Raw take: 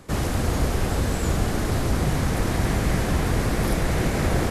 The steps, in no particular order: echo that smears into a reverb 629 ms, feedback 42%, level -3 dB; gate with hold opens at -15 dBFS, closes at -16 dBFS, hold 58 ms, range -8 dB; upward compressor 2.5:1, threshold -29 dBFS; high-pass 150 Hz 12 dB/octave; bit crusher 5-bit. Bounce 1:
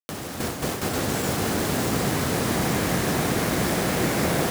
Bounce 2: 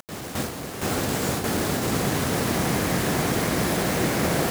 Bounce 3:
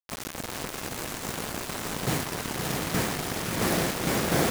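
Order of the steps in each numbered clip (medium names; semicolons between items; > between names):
echo that smears into a reverb > bit crusher > high-pass > gate with hold > upward compressor; echo that smears into a reverb > upward compressor > high-pass > bit crusher > gate with hold; upward compressor > high-pass > gate with hold > bit crusher > echo that smears into a reverb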